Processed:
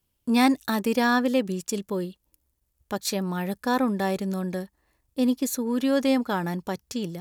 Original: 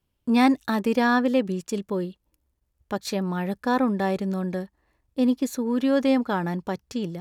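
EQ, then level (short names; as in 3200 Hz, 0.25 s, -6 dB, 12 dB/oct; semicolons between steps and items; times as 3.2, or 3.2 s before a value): high shelf 5200 Hz +12 dB; -1.5 dB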